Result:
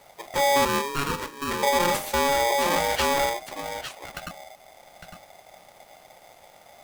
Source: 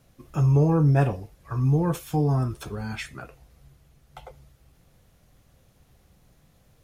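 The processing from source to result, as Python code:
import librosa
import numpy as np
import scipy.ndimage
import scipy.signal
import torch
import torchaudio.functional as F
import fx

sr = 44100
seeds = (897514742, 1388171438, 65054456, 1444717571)

p1 = x + 10.0 ** (-8.5 / 20.0) * np.pad(x, (int(856 * sr / 1000.0), 0))[:len(x)]
p2 = fx.over_compress(p1, sr, threshold_db=-29.0, ratio=-1.0)
p3 = p1 + F.gain(torch.from_numpy(p2), 2.0).numpy()
p4 = fx.steep_highpass(p3, sr, hz=170.0, slope=96, at=(0.65, 1.63))
p5 = p4 * np.sign(np.sin(2.0 * np.pi * 700.0 * np.arange(len(p4)) / sr))
y = F.gain(torch.from_numpy(p5), -3.5).numpy()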